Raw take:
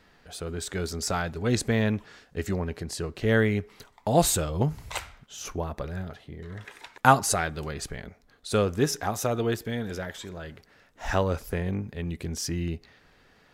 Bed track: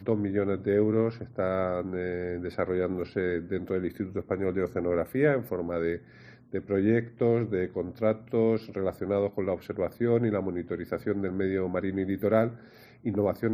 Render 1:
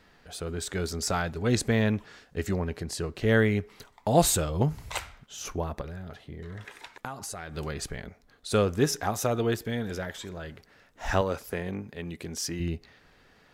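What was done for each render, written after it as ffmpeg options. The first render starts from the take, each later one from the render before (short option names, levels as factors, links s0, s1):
-filter_complex "[0:a]asettb=1/sr,asplit=3[s0][s1][s2];[s0]atrim=end=5.814[s3];[s1]atrim=start=5.81:end=7.55,asetpts=PTS-STARTPTS,afade=t=in:d=0.004:c=qsin,afade=t=out:st=1.736:d=0.004:c=qsin,acompressor=threshold=0.0178:ratio=6:attack=3.2:release=140:knee=1:detection=peak[s4];[s2]atrim=start=7.546[s5];[s3][s4]acrossfade=d=0.004:c1=hsin:c2=qsin[s6];[s6][s5]acrossfade=d=0.004:c1=qsin:c2=hsin,asettb=1/sr,asplit=3[s7][s8][s9];[s7]atrim=end=11.214[s10];[s8]atrim=start=11.21:end=12.6,asetpts=PTS-STARTPTS,afade=t=in:d=0.004:c=qsin,afade=t=out:st=1.386:d=0.004:c=qsin,highpass=f=250:p=1[s11];[s9]atrim=start=12.596[s12];[s10][s11]acrossfade=d=0.004:c1=hsin:c2=qsin[s13];[s13][s12]acrossfade=d=0.004:c1=qsin:c2=hsin"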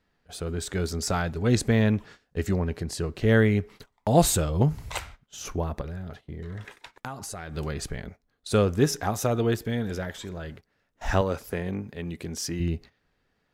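-af "agate=range=0.178:threshold=0.00501:ratio=16:detection=peak,lowshelf=f=350:g=4.5"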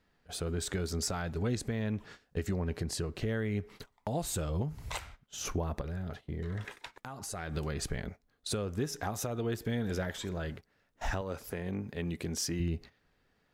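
-af "acompressor=threshold=0.0398:ratio=4,alimiter=limit=0.0708:level=0:latency=1:release=478"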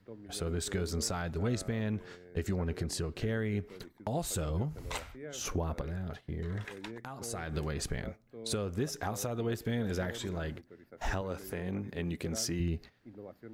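-filter_complex "[1:a]volume=0.0841[s0];[0:a][s0]amix=inputs=2:normalize=0"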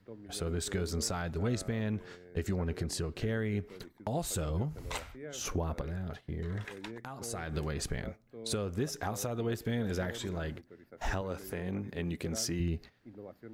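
-af anull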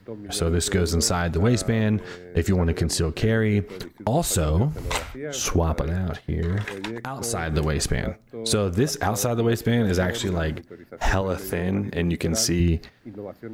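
-af "volume=3.98"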